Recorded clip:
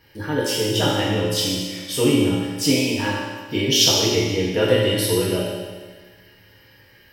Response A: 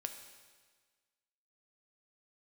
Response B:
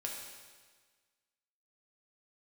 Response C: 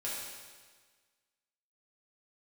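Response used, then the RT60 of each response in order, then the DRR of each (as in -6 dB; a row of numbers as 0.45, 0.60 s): C; 1.5, 1.5, 1.5 s; 5.5, -1.5, -8.0 dB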